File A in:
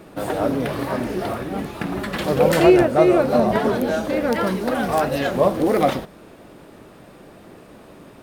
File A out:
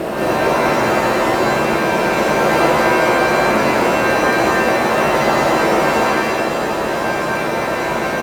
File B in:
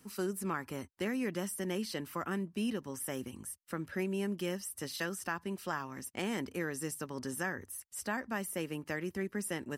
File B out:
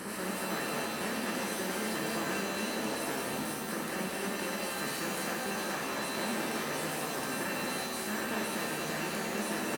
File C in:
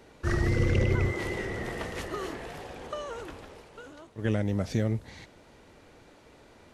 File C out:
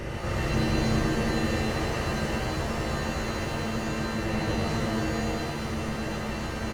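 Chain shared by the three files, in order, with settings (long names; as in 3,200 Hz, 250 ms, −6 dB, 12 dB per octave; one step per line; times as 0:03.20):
compressor on every frequency bin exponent 0.2
reverb reduction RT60 0.98 s
low-shelf EQ 200 Hz +3 dB
on a send: single-tap delay 230 ms −5 dB
on the sum: reverb with rising layers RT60 1.2 s, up +7 semitones, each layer −2 dB, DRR −2 dB
level −11.5 dB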